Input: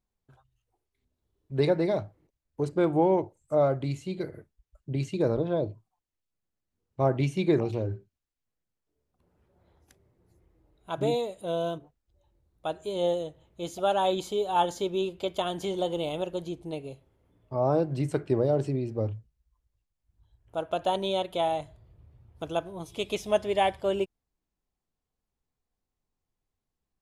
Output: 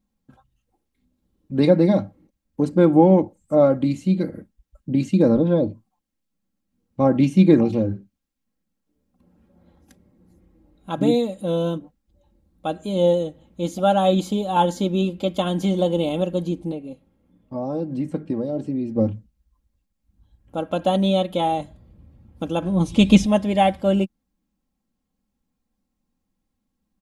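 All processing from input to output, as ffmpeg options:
-filter_complex "[0:a]asettb=1/sr,asplit=3[a][b][c];[a]atrim=end=16.724[d];[b]atrim=start=16.72:end=18.96,asetpts=PTS-STARTPTS,afade=t=in:d=0.004:c=qsin,afade=t=out:st=2.236:d=0.004:c=qsin,acrossover=split=970|2500[e][f][g];[e]acompressor=threshold=-26dB:ratio=4[h];[f]acompressor=threshold=-52dB:ratio=4[i];[g]acompressor=threshold=-59dB:ratio=4[j];[h][i][j]amix=inputs=3:normalize=0,flanger=delay=1.8:depth=4.8:regen=81:speed=1:shape=triangular[k];[c]atrim=start=18.956[l];[d][k]acrossfade=d=0.004:c1=hsin:c2=qsin[m];[m][l]acrossfade=d=0.004:c1=qsin:c2=hsin,asettb=1/sr,asplit=3[n][o][p];[n]atrim=end=22.624[q];[o]atrim=start=22.62:end=23.26,asetpts=PTS-STARTPTS,afade=t=in:d=0.004:c=qsin,afade=t=out:st=0.636:d=0.004:c=qsin,lowpass=f=9.5k:w=0.5412,lowpass=f=9.5k:w=1.3066,acontrast=71,asubboost=boost=12:cutoff=220[r];[p]atrim=start=23.256[s];[q][r]acrossfade=d=0.004:c1=hsin:c2=qsin[t];[t][s]acrossfade=d=0.004:c1=qsin:c2=hsin,equalizer=f=190:w=1.2:g=14.5,aecho=1:1:3.7:0.64,volume=3dB"

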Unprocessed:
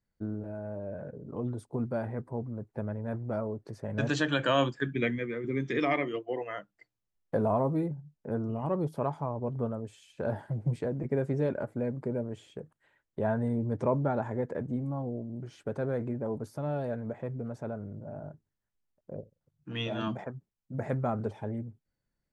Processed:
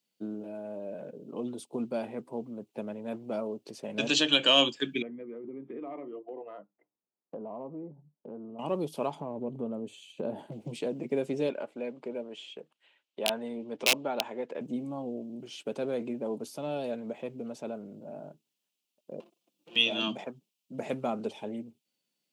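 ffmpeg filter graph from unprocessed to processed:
-filter_complex "[0:a]asettb=1/sr,asplit=3[a][b][c];[a]atrim=end=5.024[d];[b]atrim=start=5.02:end=8.59,asetpts=PTS-STARTPTS,afade=t=in:d=0.004:c=qsin,afade=t=out:st=3.566:d=0.004:c=qsin,lowpass=f=1.2k:w=0.5412,lowpass=f=1.2k:w=1.3066,acompressor=threshold=-40dB:ratio=3:attack=3.2:release=140:knee=1:detection=peak[e];[c]atrim=start=8.586[f];[d][e]acrossfade=d=0.004:c1=hsin:c2=qsin[g];[g][f]acrossfade=d=0.004:c1=qsin:c2=hsin,asettb=1/sr,asplit=3[h][i][j];[h]atrim=end=9.154[k];[i]atrim=start=9.15:end=10.52,asetpts=PTS-STARTPTS,afade=t=in:d=0.004:c=qsin,afade=t=out:st=1.366:d=0.004:c=qsin,tiltshelf=f=940:g=7.5,acompressor=threshold=-29dB:ratio=3:attack=3.2:release=140:knee=1:detection=peak,asuperstop=centerf=5200:order=4:qfactor=6.7[l];[j]atrim=start=10.516[m];[k][l]acrossfade=d=0.004:c1=hsin:c2=qsin[n];[n][m]acrossfade=d=0.004:c1=qsin:c2=hsin,asettb=1/sr,asplit=3[o][p][q];[o]atrim=end=11.504[r];[p]atrim=start=11.5:end=14.61,asetpts=PTS-STARTPTS,afade=t=in:d=0.004:c=qsin,afade=t=out:st=3.106:d=0.004:c=qsin,lowpass=2.4k,aemphasis=mode=production:type=riaa,aeval=exprs='(mod(11.2*val(0)+1,2)-1)/11.2':c=same[s];[q]atrim=start=14.606[t];[r][s]acrossfade=d=0.004:c1=hsin:c2=qsin[u];[u][t]acrossfade=d=0.004:c1=qsin:c2=hsin,asettb=1/sr,asplit=3[v][w][x];[v]atrim=end=19.204[y];[w]atrim=start=19.2:end=19.76,asetpts=PTS-STARTPTS,afade=t=in:d=0.004:c=qsin,afade=t=out:st=0.556:d=0.004:c=qsin,aeval=exprs='abs(val(0))':c=same,acompressor=threshold=-46dB:ratio=5:attack=3.2:release=140:knee=1:detection=peak,aecho=1:1:5.8:0.73,atrim=end_sample=24696[z];[x]atrim=start=19.756[aa];[y][z]acrossfade=d=0.004:c1=hsin:c2=qsin[ab];[ab][aa]acrossfade=d=0.004:c1=qsin:c2=hsin,highpass=f=200:w=0.5412,highpass=f=200:w=1.3066,highshelf=f=2.2k:t=q:w=3:g=8,acontrast=33,volume=-4.5dB"

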